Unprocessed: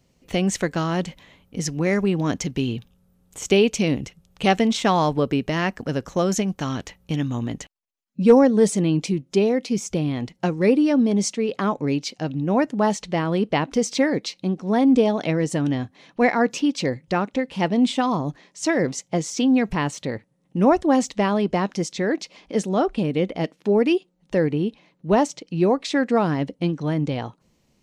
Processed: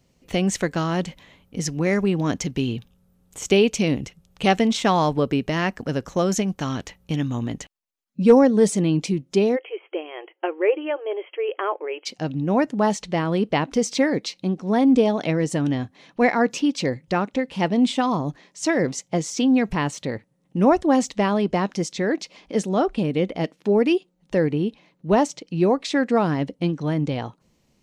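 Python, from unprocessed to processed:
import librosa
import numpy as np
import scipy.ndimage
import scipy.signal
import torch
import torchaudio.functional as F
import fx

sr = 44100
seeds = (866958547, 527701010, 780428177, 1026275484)

y = fx.brickwall_bandpass(x, sr, low_hz=320.0, high_hz=3300.0, at=(9.55, 12.05), fade=0.02)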